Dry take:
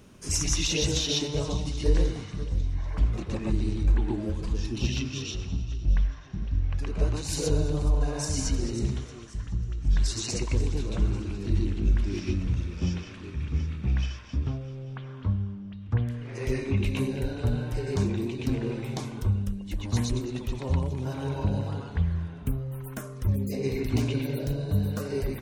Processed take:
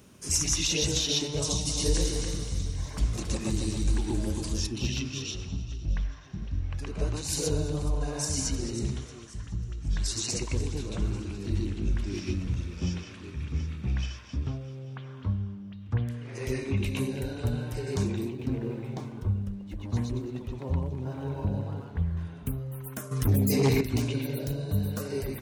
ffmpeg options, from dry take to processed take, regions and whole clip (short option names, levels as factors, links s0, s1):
-filter_complex "[0:a]asettb=1/sr,asplit=3[s0][s1][s2];[s0]atrim=end=1.424[s3];[s1]atrim=start=1.42:end=4.67,asetpts=PTS-STARTPTS,afade=t=in:d=0.004:c=qsin,afade=t=out:st=3.246:d=0.004:c=qsin,bass=f=250:g=1,treble=f=4000:g=14,aecho=1:1:272:0.473,atrim=end_sample=143325[s4];[s2]atrim=start=4.666[s5];[s3][s4]acrossfade=d=0.004:c1=hsin:c2=qsin[s6];[s6][s5]acrossfade=d=0.004:c1=qsin:c2=hsin,asettb=1/sr,asplit=3[s7][s8][s9];[s7]atrim=end=18.294[s10];[s8]atrim=start=18.29:end=22.17,asetpts=PTS-STARTPTS,afade=t=in:d=0.004:c=qsin,afade=t=out:st=3.876:d=0.004:c=qsin,lowpass=f=1200:p=1,aeval=exprs='sgn(val(0))*max(abs(val(0))-0.00119,0)':c=same[s11];[s9]atrim=start=22.166[s12];[s10][s11]acrossfade=d=0.004:c1=hsin:c2=qsin[s13];[s13][s12]acrossfade=d=0.004:c1=qsin:c2=hsin,asettb=1/sr,asplit=3[s14][s15][s16];[s14]atrim=end=23.114[s17];[s15]atrim=start=23.11:end=23.81,asetpts=PTS-STARTPTS,afade=t=in:d=0.004:c=qsin,afade=t=out:st=0.696:d=0.004:c=qsin,equalizer=f=580:w=2.6:g=-8,aecho=1:1:6.8:0.7,atrim=end_sample=30870,aeval=exprs='0.168*sin(PI/2*2*val(0)/0.168)':c=same[s18];[s16]atrim=start=23.806[s19];[s17][s18]acrossfade=d=0.004:c1=hsin:c2=qsin[s20];[s20][s19]acrossfade=d=0.004:c1=qsin:c2=hsin,highpass=53,highshelf=f=6000:g=7.5,volume=0.794"